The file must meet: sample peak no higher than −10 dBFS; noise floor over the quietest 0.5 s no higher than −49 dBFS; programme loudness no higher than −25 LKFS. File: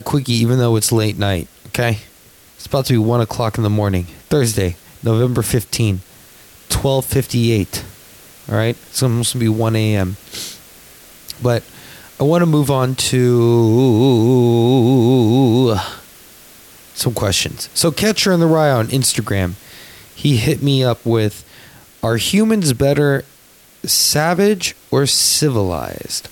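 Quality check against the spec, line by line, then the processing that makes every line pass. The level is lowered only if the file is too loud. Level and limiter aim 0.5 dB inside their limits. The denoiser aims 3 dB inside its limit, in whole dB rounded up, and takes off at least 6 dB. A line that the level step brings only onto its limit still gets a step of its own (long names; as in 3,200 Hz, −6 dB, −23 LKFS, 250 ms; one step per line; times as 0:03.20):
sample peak −4.0 dBFS: out of spec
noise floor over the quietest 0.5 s −47 dBFS: out of spec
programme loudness −15.5 LKFS: out of spec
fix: level −10 dB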